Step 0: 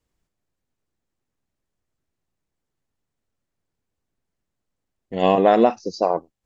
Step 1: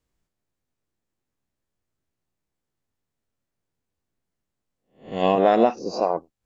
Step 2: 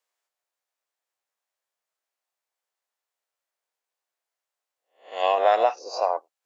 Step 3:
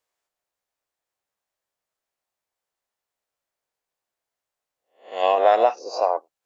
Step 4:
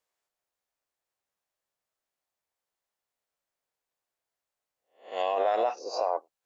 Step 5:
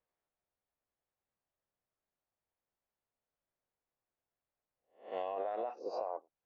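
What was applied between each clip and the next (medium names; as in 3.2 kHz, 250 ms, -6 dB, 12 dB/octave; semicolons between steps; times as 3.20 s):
reverse spectral sustain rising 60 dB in 0.36 s; trim -3 dB
high-pass 590 Hz 24 dB/octave; trim +1 dB
bass shelf 370 Hz +11.5 dB
peak limiter -14 dBFS, peak gain reduction 8.5 dB; trim -3 dB
compression 6:1, threshold -32 dBFS, peak gain reduction 10 dB; Bessel low-pass 2.1 kHz, order 2; bass shelf 340 Hz +10 dB; trim -4.5 dB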